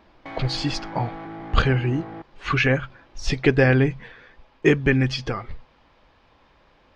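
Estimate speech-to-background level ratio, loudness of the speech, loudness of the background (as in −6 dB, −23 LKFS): 14.5 dB, −22.5 LKFS, −37.0 LKFS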